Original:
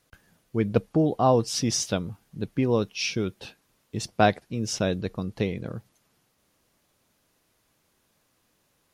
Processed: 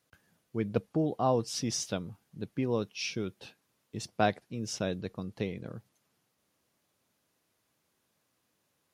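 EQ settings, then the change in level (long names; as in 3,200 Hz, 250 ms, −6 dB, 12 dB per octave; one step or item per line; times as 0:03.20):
high-pass filter 85 Hz
−7.0 dB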